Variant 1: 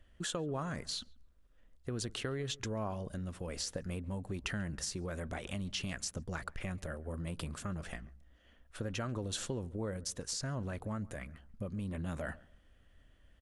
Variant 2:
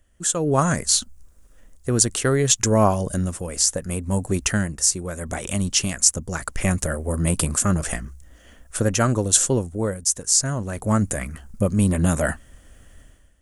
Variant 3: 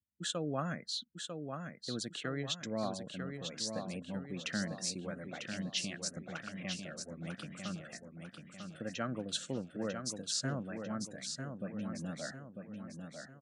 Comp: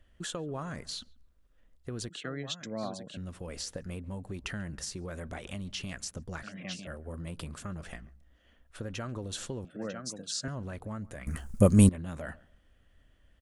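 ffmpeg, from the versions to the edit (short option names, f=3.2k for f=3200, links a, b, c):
-filter_complex "[2:a]asplit=3[a][b][c];[0:a]asplit=5[d][e][f][g][h];[d]atrim=end=2.092[i];[a]atrim=start=2.088:end=3.172[j];[e]atrim=start=3.168:end=6.432[k];[b]atrim=start=6.428:end=6.872[l];[f]atrim=start=6.868:end=9.652[m];[c]atrim=start=9.648:end=10.482[n];[g]atrim=start=10.478:end=11.272[o];[1:a]atrim=start=11.268:end=11.892[p];[h]atrim=start=11.888[q];[i][j]acrossfade=d=0.004:c1=hsin:c2=hsin[r];[r][k]acrossfade=d=0.004:c1=hsin:c2=hsin[s];[s][l]acrossfade=d=0.004:c1=hsin:c2=hsin[t];[t][m]acrossfade=d=0.004:c1=hsin:c2=hsin[u];[u][n]acrossfade=d=0.004:c1=hsin:c2=hsin[v];[v][o]acrossfade=d=0.004:c1=hsin:c2=hsin[w];[w][p]acrossfade=d=0.004:c1=hsin:c2=hsin[x];[x][q]acrossfade=d=0.004:c1=hsin:c2=hsin"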